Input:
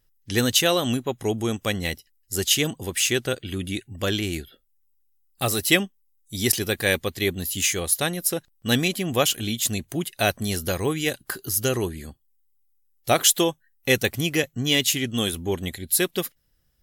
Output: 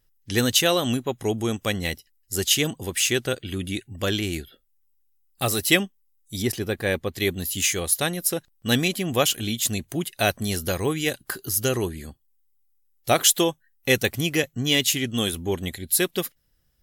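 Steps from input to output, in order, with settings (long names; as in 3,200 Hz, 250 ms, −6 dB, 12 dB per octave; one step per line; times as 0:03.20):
0:06.42–0:07.14: high-shelf EQ 2,300 Hz −11.5 dB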